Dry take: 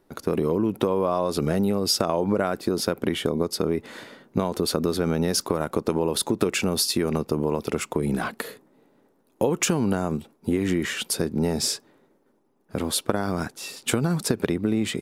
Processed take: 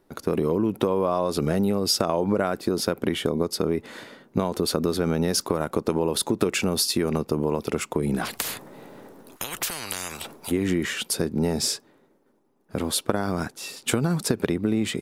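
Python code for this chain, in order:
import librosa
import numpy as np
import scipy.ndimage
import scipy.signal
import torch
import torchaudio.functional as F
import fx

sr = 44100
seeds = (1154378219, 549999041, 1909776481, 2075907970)

y = fx.spectral_comp(x, sr, ratio=10.0, at=(8.24, 10.5), fade=0.02)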